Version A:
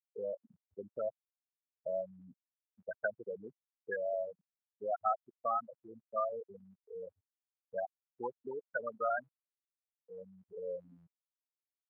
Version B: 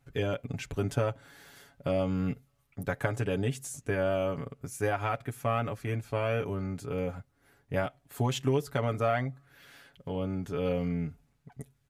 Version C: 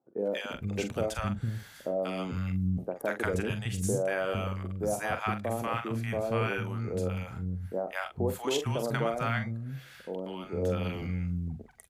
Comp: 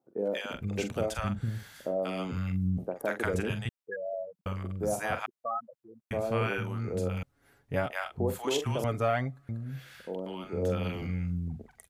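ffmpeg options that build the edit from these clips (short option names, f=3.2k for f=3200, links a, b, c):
-filter_complex "[0:a]asplit=2[a][b];[1:a]asplit=2[c][d];[2:a]asplit=5[e][f][g][h][i];[e]atrim=end=3.692[j];[a]atrim=start=3.688:end=4.462[k];[f]atrim=start=4.458:end=5.262[l];[b]atrim=start=5.258:end=6.112[m];[g]atrim=start=6.108:end=7.232[n];[c]atrim=start=7.228:end=7.902[o];[h]atrim=start=7.898:end=8.842[p];[d]atrim=start=8.838:end=9.492[q];[i]atrim=start=9.488[r];[j][k]acrossfade=d=0.004:c1=hsin:c2=hsin[s];[s][l]acrossfade=d=0.004:c1=hsin:c2=hsin[t];[t][m]acrossfade=d=0.004:c1=hsin:c2=hsin[u];[u][n]acrossfade=d=0.004:c1=hsin:c2=hsin[v];[v][o]acrossfade=d=0.004:c1=hsin:c2=hsin[w];[w][p]acrossfade=d=0.004:c1=hsin:c2=hsin[x];[x][q]acrossfade=d=0.004:c1=hsin:c2=hsin[y];[y][r]acrossfade=d=0.004:c1=hsin:c2=hsin"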